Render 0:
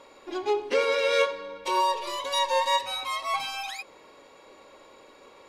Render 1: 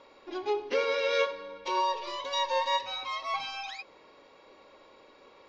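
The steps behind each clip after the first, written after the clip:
Butterworth low-pass 6,200 Hz 48 dB per octave
level −4 dB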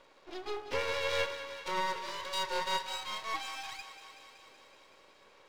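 half-wave rectification
low-shelf EQ 230 Hz −7.5 dB
on a send: feedback echo with a high-pass in the loop 188 ms, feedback 75%, high-pass 450 Hz, level −11.5 dB

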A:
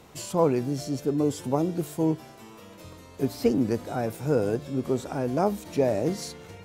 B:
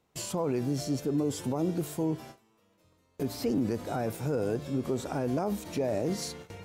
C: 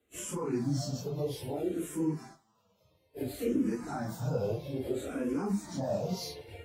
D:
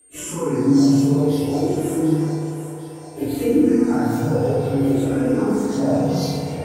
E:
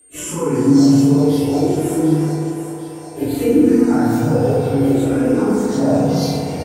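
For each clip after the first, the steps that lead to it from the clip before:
brickwall limiter −20.5 dBFS, peak gain reduction 11.5 dB; noise gate with hold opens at −34 dBFS
random phases in long frames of 100 ms; frequency shifter mixed with the dry sound −0.6 Hz
steady tone 8,700 Hz −59 dBFS; echo with a time of its own for lows and highs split 510 Hz, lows 86 ms, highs 746 ms, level −9.5 dB; feedback delay network reverb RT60 2.7 s, high-frequency decay 0.35×, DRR −4 dB; level +6.5 dB
single-tap delay 379 ms −14 dB; level +3.5 dB

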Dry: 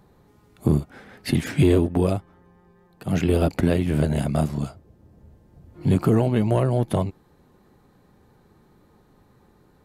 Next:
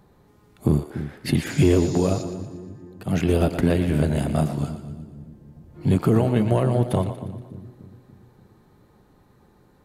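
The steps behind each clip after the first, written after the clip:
healed spectral selection 0:01.52–0:02.20, 3,500–7,300 Hz before
echo with a time of its own for lows and highs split 360 Hz, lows 290 ms, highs 118 ms, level −10.5 dB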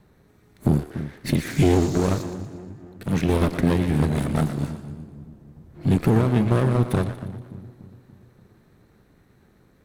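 lower of the sound and its delayed copy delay 0.49 ms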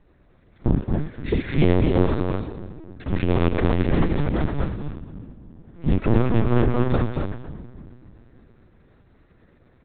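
single-tap delay 230 ms −3.5 dB
linear-prediction vocoder at 8 kHz pitch kept

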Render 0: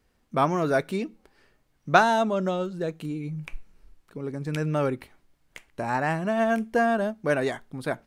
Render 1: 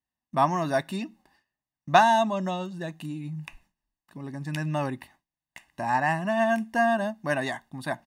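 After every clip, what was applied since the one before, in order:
high-pass filter 200 Hz 6 dB per octave
noise gate with hold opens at −48 dBFS
comb filter 1.1 ms, depth 87%
level −1.5 dB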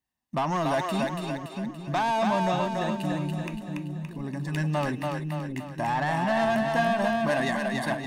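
brickwall limiter −17.5 dBFS, peak gain reduction 11 dB
soft clipping −25 dBFS, distortion −13 dB
echo with a time of its own for lows and highs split 360 Hz, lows 649 ms, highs 285 ms, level −3 dB
level +3.5 dB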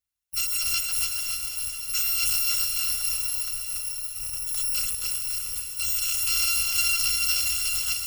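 samples in bit-reversed order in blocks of 256 samples
parametric band 410 Hz −11.5 dB 2.2 octaves
feedback delay with all-pass diffusion 458 ms, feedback 49%, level −7 dB

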